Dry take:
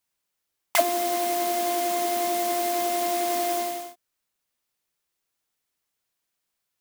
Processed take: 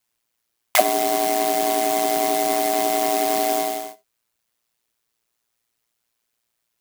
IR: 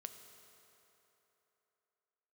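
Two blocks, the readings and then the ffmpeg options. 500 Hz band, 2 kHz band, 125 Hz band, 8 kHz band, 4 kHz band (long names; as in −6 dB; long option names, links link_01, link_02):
+4.5 dB, +4.5 dB, can't be measured, +4.5 dB, +4.5 dB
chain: -filter_complex "[0:a]aeval=exprs='val(0)*sin(2*PI*58*n/s)':channel_layout=same,asplit=2[link_01][link_02];[1:a]atrim=start_sample=2205,atrim=end_sample=3969[link_03];[link_02][link_03]afir=irnorm=-1:irlink=0,volume=10dB[link_04];[link_01][link_04]amix=inputs=2:normalize=0,volume=-1dB"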